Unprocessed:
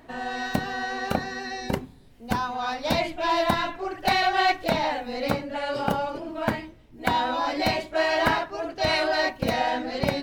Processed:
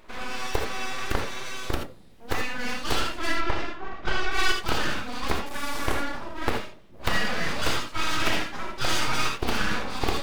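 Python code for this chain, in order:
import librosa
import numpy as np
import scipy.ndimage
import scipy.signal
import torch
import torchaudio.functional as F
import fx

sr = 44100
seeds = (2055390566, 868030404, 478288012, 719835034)

y = fx.delta_mod(x, sr, bps=64000, step_db=-31.0, at=(5.46, 5.95))
y = fx.highpass(y, sr, hz=540.0, slope=12, at=(7.85, 8.53))
y = np.abs(y)
y = fx.spacing_loss(y, sr, db_at_10k=21, at=(3.31, 4.31), fade=0.02)
y = fx.rev_gated(y, sr, seeds[0], gate_ms=100, shape='rising', drr_db=3.5)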